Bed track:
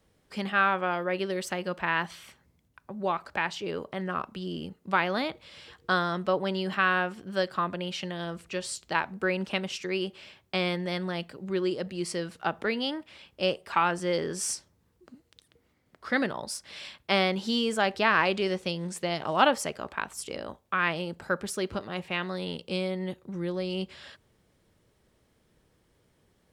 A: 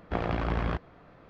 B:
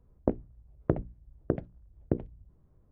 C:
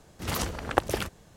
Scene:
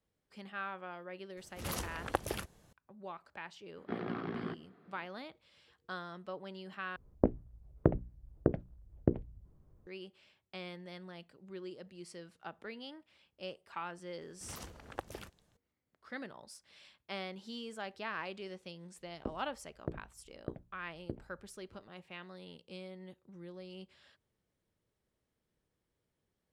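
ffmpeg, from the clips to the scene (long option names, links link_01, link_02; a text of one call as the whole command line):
ffmpeg -i bed.wav -i cue0.wav -i cue1.wav -i cue2.wav -filter_complex "[3:a]asplit=2[link_01][link_02];[2:a]asplit=2[link_03][link_04];[0:a]volume=-17dB[link_05];[link_01]equalizer=frequency=11000:width_type=o:width=0.22:gain=7.5[link_06];[1:a]highpass=frequency=140:width=0.5412,highpass=frequency=140:width=1.3066,equalizer=frequency=230:width_type=q:width=4:gain=8,equalizer=frequency=390:width_type=q:width=4:gain=8,equalizer=frequency=570:width_type=q:width=4:gain=-9,equalizer=frequency=920:width_type=q:width=4:gain=-6,equalizer=frequency=2600:width_type=q:width=4:gain=-5,lowpass=frequency=4800:width=0.5412,lowpass=frequency=4800:width=1.3066[link_07];[link_05]asplit=2[link_08][link_09];[link_08]atrim=end=6.964[link_10];[link_03]atrim=end=2.91,asetpts=PTS-STARTPTS,volume=-0.5dB[link_11];[link_09]atrim=start=9.866[link_12];[link_06]atrim=end=1.36,asetpts=PTS-STARTPTS,volume=-9dB,afade=type=in:duration=0.004:curve=hsin,afade=type=out:start_time=1.356:duration=0.004:curve=hsin,adelay=1370[link_13];[link_07]atrim=end=1.29,asetpts=PTS-STARTPTS,volume=-9dB,afade=type=in:duration=0.004:curve=hsin,afade=type=out:start_time=1.286:duration=0.004:curve=hsin,adelay=166257S[link_14];[link_02]atrim=end=1.36,asetpts=PTS-STARTPTS,volume=-17.5dB,afade=type=in:duration=0.004:curve=hsin,afade=type=out:start_time=1.356:duration=0.004:curve=hsin,adelay=14210[link_15];[link_04]atrim=end=2.91,asetpts=PTS-STARTPTS,volume=-13dB,afade=type=in:duration=0.004:curve=hsin,afade=type=out:start_time=2.906:duration=0.004:curve=hsin,adelay=18980[link_16];[link_10][link_11]acrossfade=duration=0.004:curve1=hsin:curve2=hsin[link_17];[link_17][link_12]acrossfade=duration=0.004:curve1=hsin:curve2=hsin[link_18];[link_18][link_13][link_14][link_15][link_16]amix=inputs=5:normalize=0" out.wav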